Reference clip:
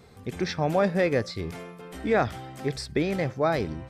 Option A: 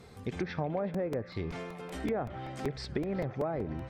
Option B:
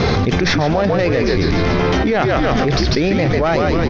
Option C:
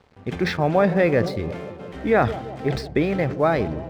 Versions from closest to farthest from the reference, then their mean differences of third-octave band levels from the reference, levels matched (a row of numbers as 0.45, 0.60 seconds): C, A, B; 4.0, 6.5, 9.5 decibels